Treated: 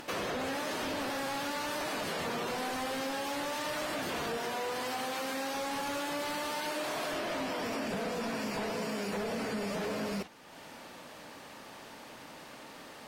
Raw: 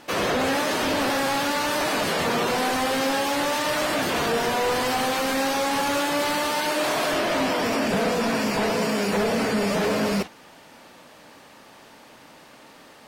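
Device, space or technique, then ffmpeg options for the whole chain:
upward and downward compression: -filter_complex "[0:a]acompressor=mode=upward:threshold=-34dB:ratio=2.5,acompressor=threshold=-26dB:ratio=6,asettb=1/sr,asplit=3[link_01][link_02][link_03];[link_01]atrim=end=4.374[link_04];[link_02]atrim=start=4.37:end=5.54,asetpts=PTS-STARTPTS,afade=type=in:duration=0.004:curve=qsin,afade=type=out:start_time=1.166:duration=0.004:curve=qsin,highpass=frequency=170:poles=1[link_05];[link_03]atrim=start=5.536[link_06];[link_04][link_05]acrossfade=duration=0.004:curve1=hsin:curve2=qsin[link_07];[link_07][link_06]acrossfade=duration=0.004:curve1=qsin:curve2=hsin,volume=-6.5dB"

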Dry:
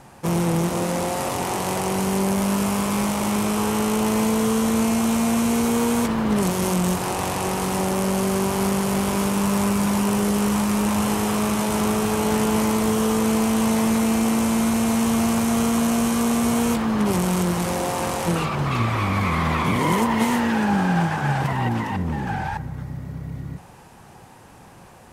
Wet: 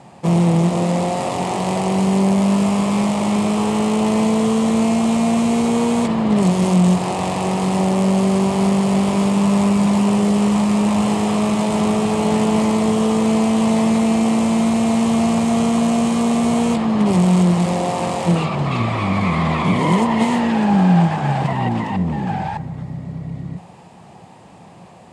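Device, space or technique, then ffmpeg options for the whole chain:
car door speaker: -af "highpass=94,equalizer=frequency=180:width_type=q:width=4:gain=7,equalizer=frequency=670:width_type=q:width=4:gain=5,equalizer=frequency=1500:width_type=q:width=4:gain=-9,equalizer=frequency=5900:width_type=q:width=4:gain=-7,lowpass=frequency=8200:width=0.5412,lowpass=frequency=8200:width=1.3066,volume=2.5dB"

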